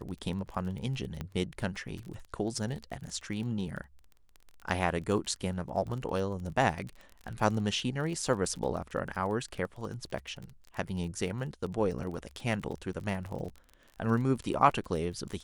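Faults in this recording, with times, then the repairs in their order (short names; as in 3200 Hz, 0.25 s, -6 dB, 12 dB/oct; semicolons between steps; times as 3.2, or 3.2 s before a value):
crackle 27/s -37 dBFS
1.21 pop -23 dBFS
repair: de-click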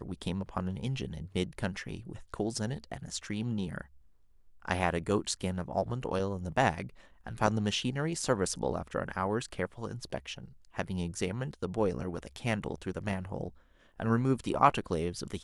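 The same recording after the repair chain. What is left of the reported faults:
none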